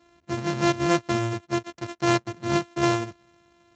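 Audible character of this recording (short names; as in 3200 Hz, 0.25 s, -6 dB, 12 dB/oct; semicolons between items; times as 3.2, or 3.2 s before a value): a buzz of ramps at a fixed pitch in blocks of 128 samples; Speex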